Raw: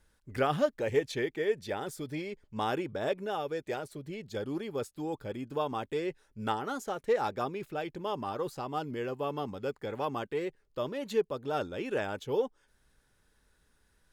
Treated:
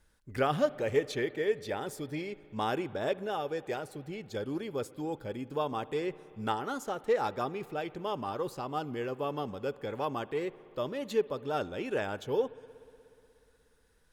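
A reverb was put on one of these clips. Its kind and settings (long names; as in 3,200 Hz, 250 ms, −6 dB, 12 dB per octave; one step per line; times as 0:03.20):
spring reverb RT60 2.9 s, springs 60 ms, chirp 35 ms, DRR 18 dB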